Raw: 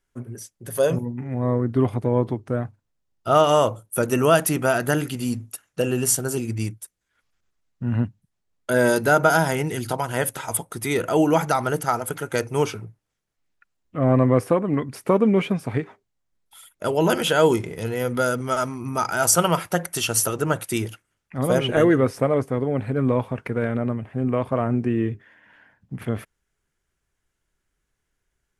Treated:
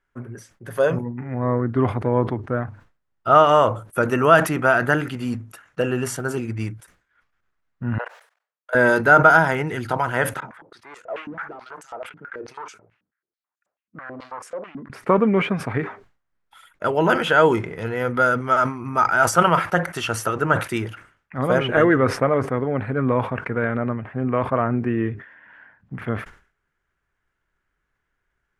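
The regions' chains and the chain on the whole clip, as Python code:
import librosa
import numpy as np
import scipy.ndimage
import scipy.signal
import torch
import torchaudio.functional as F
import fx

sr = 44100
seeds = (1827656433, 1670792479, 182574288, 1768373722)

y = fx.chain(x, sr, fx.steep_highpass(hz=460.0, slope=72),
    fx.level_steps(step_db=22), at=(7.98, 8.75))
y = fx.chain(y, sr, fx.block_float(bits=7),
    fx.clip_hard(threshold_db=-22.0),
    fx.filter_held_bandpass(hz=9.2, low_hz=220.0, high_hz=7300.0), at=(10.4, 14.9))
y = fx.lowpass(y, sr, hz=2100.0, slope=6)
y = fx.peak_eq(y, sr, hz=1500.0, db=10.0, octaves=1.6)
y = fx.sustainer(y, sr, db_per_s=130.0)
y = y * librosa.db_to_amplitude(-1.0)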